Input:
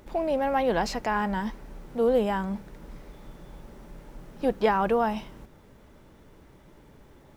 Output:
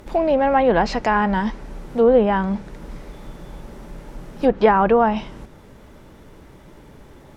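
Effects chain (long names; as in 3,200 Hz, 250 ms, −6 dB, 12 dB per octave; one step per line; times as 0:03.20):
treble cut that deepens with the level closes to 2,200 Hz, closed at −20 dBFS
level +8.5 dB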